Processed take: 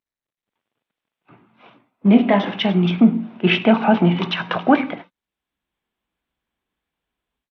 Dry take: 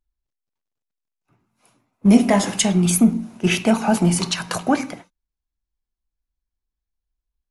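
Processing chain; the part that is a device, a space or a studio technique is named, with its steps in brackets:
Bluetooth headset (high-pass filter 170 Hz 12 dB per octave; automatic gain control gain up to 17 dB; downsampling to 8,000 Hz; level −1 dB; SBC 64 kbit/s 32,000 Hz)

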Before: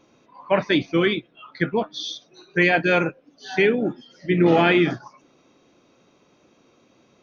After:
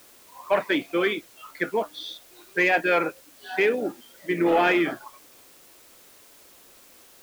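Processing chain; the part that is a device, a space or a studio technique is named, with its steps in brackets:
tape answering machine (band-pass filter 380–2,800 Hz; soft clipping −10 dBFS, distortion −22 dB; tape wow and flutter; white noise bed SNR 26 dB)

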